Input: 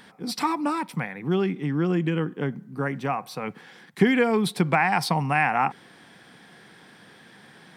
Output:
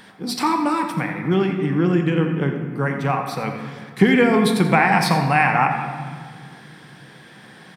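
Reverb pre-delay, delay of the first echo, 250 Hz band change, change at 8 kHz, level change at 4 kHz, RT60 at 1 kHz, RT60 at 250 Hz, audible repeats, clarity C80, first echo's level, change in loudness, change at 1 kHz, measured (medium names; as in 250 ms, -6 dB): 3 ms, 86 ms, +6.0 dB, +5.0 dB, +5.0 dB, 1.8 s, 2.7 s, 1, 6.5 dB, -12.0 dB, +5.5 dB, +5.5 dB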